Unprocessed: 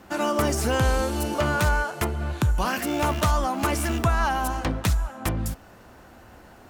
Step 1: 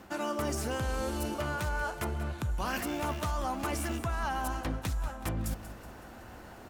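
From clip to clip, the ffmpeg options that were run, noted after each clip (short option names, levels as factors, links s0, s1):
-af "areverse,acompressor=threshold=0.0282:ratio=5,areverse,aecho=1:1:187|374|561|748|935:0.2|0.102|0.0519|0.0265|0.0135"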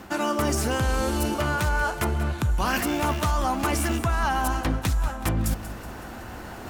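-af "equalizer=f=560:w=2.4:g=-2.5,areverse,acompressor=mode=upward:threshold=0.00794:ratio=2.5,areverse,volume=2.82"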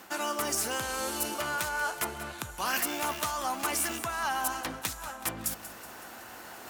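-af "highpass=f=690:p=1,highshelf=f=6100:g=8,volume=0.631"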